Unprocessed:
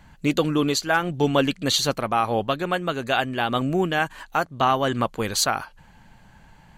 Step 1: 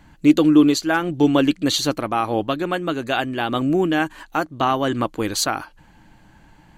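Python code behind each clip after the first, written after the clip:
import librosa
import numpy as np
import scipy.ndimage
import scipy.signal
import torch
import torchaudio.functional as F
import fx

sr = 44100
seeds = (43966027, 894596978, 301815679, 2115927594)

y = fx.peak_eq(x, sr, hz=310.0, db=13.0, octaves=0.3)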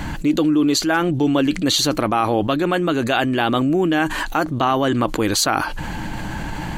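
y = fx.env_flatten(x, sr, amount_pct=70)
y = F.gain(torch.from_numpy(y), -6.0).numpy()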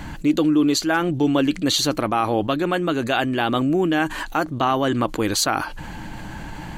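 y = fx.upward_expand(x, sr, threshold_db=-27.0, expansion=1.5)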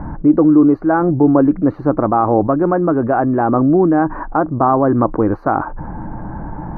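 y = scipy.signal.sosfilt(scipy.signal.cheby2(4, 50, 3100.0, 'lowpass', fs=sr, output='sos'), x)
y = F.gain(torch.from_numpy(y), 7.5).numpy()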